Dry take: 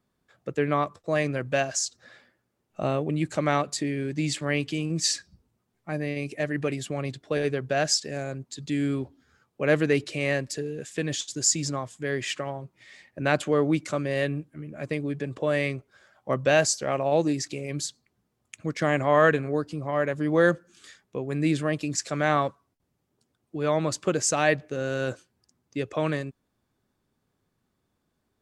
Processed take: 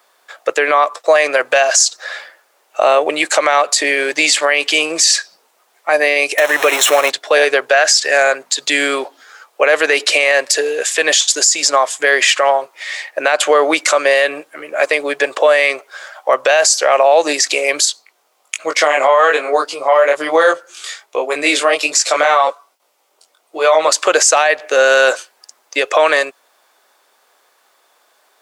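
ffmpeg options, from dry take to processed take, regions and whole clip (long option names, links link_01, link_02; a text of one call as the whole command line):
ffmpeg -i in.wav -filter_complex "[0:a]asettb=1/sr,asplit=3[link_01][link_02][link_03];[link_01]atrim=end=6.384[link_04];[link_02]atrim=start=6.38:end=7.1,asetpts=PTS-STARTPTS,afade=type=in:duration=0.004:curve=qsin,afade=type=out:start_time=0.716:duration=0.004:curve=qsin,aeval=exprs='val(0)+0.5*0.0237*sgn(val(0))':channel_layout=same,asuperstop=centerf=4700:order=4:qfactor=5.5[link_05];[link_03]atrim=start=7.096[link_06];[link_04][link_05]acrossfade=duration=0.004:curve1=hsin:curve2=qsin[link_07];[link_07][link_06]acrossfade=duration=0.004:curve1=qsin:curve2=hsin,asettb=1/sr,asplit=3[link_08][link_09][link_10];[link_08]atrim=end=7.734[link_11];[link_09]atrim=start=7.73:end=8.5,asetpts=PTS-STARTPTS,afade=type=in:duration=0.004:curve=qsin,afade=type=out:start_time=0.766:duration=0.004:curve=qsin,equalizer=frequency=1700:width=1.2:gain=5.5,aeval=exprs='val(0)+0.00447*(sin(2*PI*50*n/s)+sin(2*PI*2*50*n/s)/2+sin(2*PI*3*50*n/s)/3+sin(2*PI*4*50*n/s)/4+sin(2*PI*5*50*n/s)/5)':channel_layout=same[link_12];[link_10]atrim=start=8.496[link_13];[link_11][link_12]acrossfade=duration=0.004:curve1=hsin:curve2=qsin[link_14];[link_14][link_13]acrossfade=duration=0.004:curve1=qsin:curve2=hsin,asettb=1/sr,asplit=3[link_15][link_16][link_17];[link_15]atrim=end=17.854[link_18];[link_16]atrim=start=17.85:end=23.88,asetpts=PTS-STARTPTS,afade=type=in:duration=0.004:curve=qsin,afade=type=out:start_time=6.026:duration=0.004:curve=qsin,equalizer=frequency=1700:width=7.2:gain=-7.5,flanger=delay=18.5:depth=4.1:speed=1.2[link_19];[link_17]atrim=start=23.876[link_20];[link_18][link_19]acrossfade=duration=0.004:curve1=hsin:curve2=qsin[link_21];[link_21][link_20]acrossfade=duration=0.004:curve1=qsin:curve2=hsin,highpass=frequency=570:width=0.5412,highpass=frequency=570:width=1.3066,acompressor=threshold=-31dB:ratio=2,alimiter=level_in=26.5dB:limit=-1dB:release=50:level=0:latency=1,volume=-1dB" out.wav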